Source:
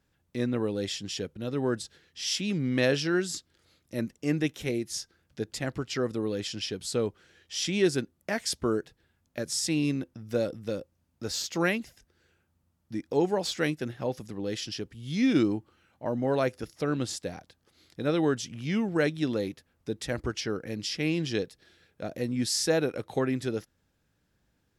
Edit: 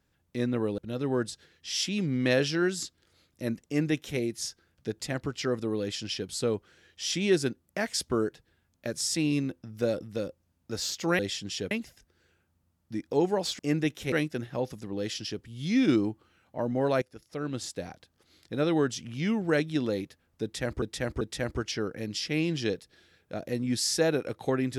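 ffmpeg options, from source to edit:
ffmpeg -i in.wav -filter_complex "[0:a]asplit=9[link_01][link_02][link_03][link_04][link_05][link_06][link_07][link_08][link_09];[link_01]atrim=end=0.782[link_10];[link_02]atrim=start=1.298:end=11.712[link_11];[link_03]atrim=start=0.778:end=1.302[link_12];[link_04]atrim=start=11.708:end=13.592[link_13];[link_05]atrim=start=4.178:end=4.712[link_14];[link_06]atrim=start=13.588:end=16.49,asetpts=PTS-STARTPTS,afade=type=out:start_time=2.898:duration=0.004:curve=hsin:silence=0.16788[link_15];[link_07]atrim=start=16.49:end=20.292,asetpts=PTS-STARTPTS,afade=type=in:duration=0.88:silence=0.16788[link_16];[link_08]atrim=start=19.898:end=20.292[link_17];[link_09]atrim=start=19.898[link_18];[link_10][link_11]acrossfade=duration=0.004:curve1=hsin:curve2=hsin[link_19];[link_19][link_12]acrossfade=duration=0.004:curve1=hsin:curve2=hsin[link_20];[link_20][link_13]acrossfade=duration=0.004:curve1=hsin:curve2=hsin[link_21];[link_21][link_14]acrossfade=duration=0.004:curve1=hsin:curve2=hsin[link_22];[link_15][link_16]concat=n=2:v=0:a=1[link_23];[link_22][link_23]acrossfade=duration=0.004:curve1=hsin:curve2=hsin[link_24];[link_24][link_17]acrossfade=duration=0.004:curve1=hsin:curve2=hsin[link_25];[link_25][link_18]acrossfade=duration=0.004:curve1=hsin:curve2=hsin" out.wav

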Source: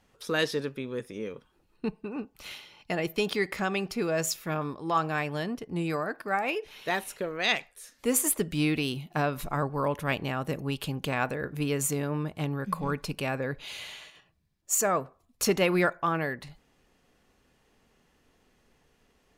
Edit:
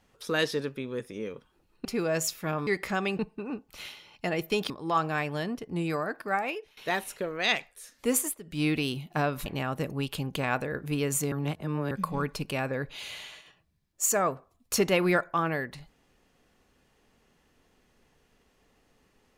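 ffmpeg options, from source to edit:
ffmpeg -i in.wav -filter_complex "[0:a]asplit=11[link_01][link_02][link_03][link_04][link_05][link_06][link_07][link_08][link_09][link_10][link_11];[link_01]atrim=end=1.852[link_12];[link_02]atrim=start=3.878:end=4.702[link_13];[link_03]atrim=start=3.358:end=3.882[link_14];[link_04]atrim=start=1.848:end=3.362[link_15];[link_05]atrim=start=4.698:end=6.77,asetpts=PTS-STARTPTS,afade=type=out:start_time=1.662:duration=0.41:silence=0.112202[link_16];[link_06]atrim=start=6.77:end=8.38,asetpts=PTS-STARTPTS,afade=type=in:duration=0.004:curve=hsin:silence=0.112202,afade=type=out:start_time=1.37:duration=0.24:silence=0.149624[link_17];[link_07]atrim=start=8.38:end=8.43,asetpts=PTS-STARTPTS,volume=-16.5dB[link_18];[link_08]atrim=start=8.43:end=9.462,asetpts=PTS-STARTPTS,afade=type=in:duration=0.24:silence=0.149624[link_19];[link_09]atrim=start=10.148:end=12.012[link_20];[link_10]atrim=start=12.008:end=12.602,asetpts=PTS-STARTPTS,areverse[link_21];[link_11]atrim=start=12.598[link_22];[link_12][link_13]acrossfade=duration=0.004:curve1=hsin:curve2=hsin[link_23];[link_23][link_14]acrossfade=duration=0.004:curve1=hsin:curve2=hsin[link_24];[link_24][link_15]acrossfade=duration=0.004:curve1=hsin:curve2=hsin[link_25];[link_16][link_17][link_18][link_19]concat=n=4:v=0:a=1[link_26];[link_25][link_26]acrossfade=duration=0.004:curve1=hsin:curve2=hsin[link_27];[link_27][link_20]acrossfade=duration=0.004:curve1=hsin:curve2=hsin[link_28];[link_28][link_21]acrossfade=duration=0.004:curve1=hsin:curve2=hsin[link_29];[link_29][link_22]acrossfade=duration=0.004:curve1=hsin:curve2=hsin" out.wav

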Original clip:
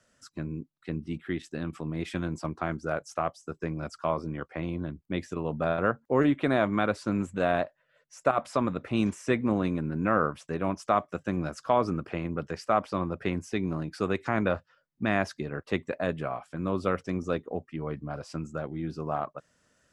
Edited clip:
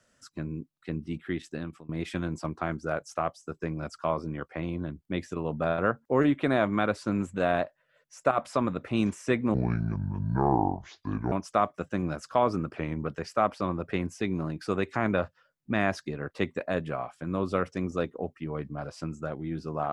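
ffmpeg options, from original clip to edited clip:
ffmpeg -i in.wav -filter_complex "[0:a]asplit=6[link_01][link_02][link_03][link_04][link_05][link_06];[link_01]atrim=end=1.89,asetpts=PTS-STARTPTS,afade=type=out:start_time=1.54:duration=0.35:silence=0.0630957[link_07];[link_02]atrim=start=1.89:end=9.544,asetpts=PTS-STARTPTS,afade=type=in:duration=0.004:curve=hsin:silence=0.0630957[link_08];[link_03]atrim=start=9.54:end=10.66,asetpts=PTS-STARTPTS,asetrate=27783,aresample=44100[link_09];[link_04]atrim=start=10.656:end=12.114[link_10];[link_05]atrim=start=12.11:end=12.39,asetpts=PTS-STARTPTS,asetrate=41013,aresample=44100,atrim=end_sample=13277,asetpts=PTS-STARTPTS[link_11];[link_06]atrim=start=12.386[link_12];[link_07][link_08]concat=n=2:v=0:a=1[link_13];[link_13][link_09]acrossfade=duration=0.004:curve1=hsin:curve2=hsin[link_14];[link_14][link_10]acrossfade=duration=0.004:curve1=hsin:curve2=hsin[link_15];[link_15][link_11]acrossfade=duration=0.004:curve1=hsin:curve2=hsin[link_16];[link_16][link_12]acrossfade=duration=0.004:curve1=hsin:curve2=hsin" out.wav

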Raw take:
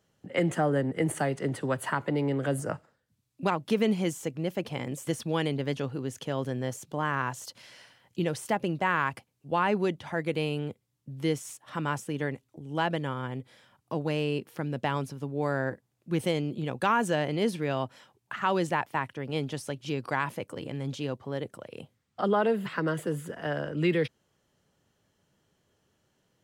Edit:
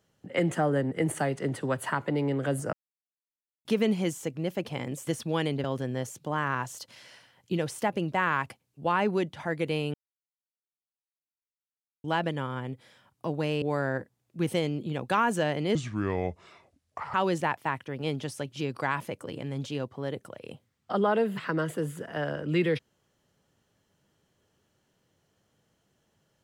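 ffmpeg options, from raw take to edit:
ffmpeg -i in.wav -filter_complex "[0:a]asplit=9[link_01][link_02][link_03][link_04][link_05][link_06][link_07][link_08][link_09];[link_01]atrim=end=2.73,asetpts=PTS-STARTPTS,afade=type=out:start_time=2.726:duration=0.004:curve=hsin[link_10];[link_02]atrim=start=2.73:end=3.65,asetpts=PTS-STARTPTS,volume=0[link_11];[link_03]atrim=start=3.65:end=5.642,asetpts=PTS-STARTPTS,afade=type=in:duration=0.004:curve=hsin[link_12];[link_04]atrim=start=6.308:end=10.61,asetpts=PTS-STARTPTS,afade=type=out:start_time=4.298:duration=0.004:curve=hsin[link_13];[link_05]atrim=start=10.61:end=12.71,asetpts=PTS-STARTPTS,volume=0[link_14];[link_06]atrim=start=12.71:end=14.292,asetpts=PTS-STARTPTS,afade=type=in:duration=0.004:curve=hsin[link_15];[link_07]atrim=start=15.338:end=17.474[link_16];[link_08]atrim=start=17.47:end=18.43,asetpts=PTS-STARTPTS,asetrate=30429,aresample=44100[link_17];[link_09]atrim=start=18.426[link_18];[link_10][link_11][link_12]concat=n=3:v=0:a=1[link_19];[link_13][link_14][link_15]concat=n=3:v=0:a=1[link_20];[link_19][link_20]acrossfade=duration=0.004:curve1=hsin:curve2=hsin[link_21];[link_21][link_16]acrossfade=duration=0.004:curve1=hsin:curve2=hsin[link_22];[link_22][link_17]acrossfade=duration=0.004:curve1=hsin:curve2=hsin[link_23];[link_23][link_18]acrossfade=duration=0.004:curve1=hsin:curve2=hsin" out.wav

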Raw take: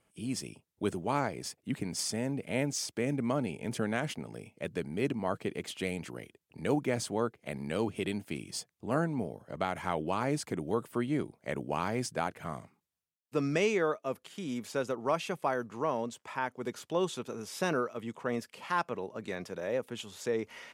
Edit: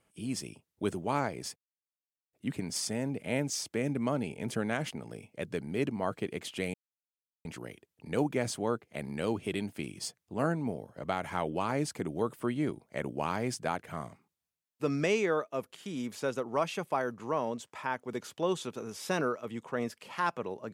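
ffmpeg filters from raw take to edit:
ffmpeg -i in.wav -filter_complex "[0:a]asplit=3[link_01][link_02][link_03];[link_01]atrim=end=1.56,asetpts=PTS-STARTPTS,afade=type=out:start_time=1.556:duration=0.004:curve=hsin,apad=pad_dur=0.77[link_04];[link_02]atrim=start=1.56:end=5.97,asetpts=PTS-STARTPTS,afade=type=in:duration=0.004:curve=hsin,afade=type=out:start_time=4.406:duration=0.004:curve=hsin,apad=pad_dur=0.71[link_05];[link_03]atrim=start=5.97,asetpts=PTS-STARTPTS,afade=type=in:duration=0.004:curve=hsin[link_06];[link_04][link_05][link_06]concat=n=3:v=0:a=1" out.wav

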